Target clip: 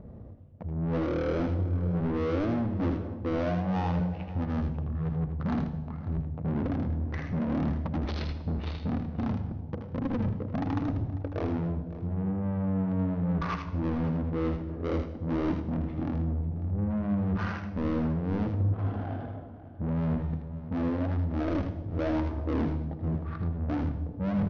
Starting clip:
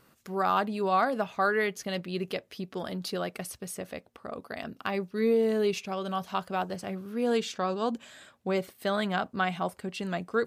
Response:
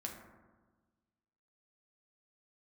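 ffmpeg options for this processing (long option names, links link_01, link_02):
-filter_complex "[0:a]lowshelf=frequency=410:gain=12,bandreject=frequency=60:width_type=h:width=6,bandreject=frequency=120:width_type=h:width=6,bandreject=frequency=180:width_type=h:width=6,bandreject=frequency=240:width_type=h:width=6,bandreject=frequency=300:width_type=h:width=6,bandreject=frequency=360:width_type=h:width=6,bandreject=frequency=420:width_type=h:width=6,areverse,acompressor=threshold=-35dB:ratio=12,areverse,crystalizer=i=2.5:c=0,adynamicsmooth=sensitivity=6.5:basefreq=530,asplit=2[link_01][link_02];[link_02]highpass=frequency=720:poles=1,volume=27dB,asoftclip=type=tanh:threshold=-24.5dB[link_03];[link_01][link_03]amix=inputs=2:normalize=0,lowpass=frequency=3700:poles=1,volume=-6dB,asplit=2[link_04][link_05];[link_05]adelay=233.2,volume=-14dB,highshelf=frequency=4000:gain=-5.25[link_06];[link_04][link_06]amix=inputs=2:normalize=0,asplit=2[link_07][link_08];[1:a]atrim=start_sample=2205,highshelf=frequency=3800:gain=7.5,adelay=34[link_09];[link_08][link_09]afir=irnorm=-1:irlink=0,volume=-6.5dB[link_10];[link_07][link_10]amix=inputs=2:normalize=0,aresample=32000,aresample=44100,asetrate=18846,aresample=44100,volume=2dB"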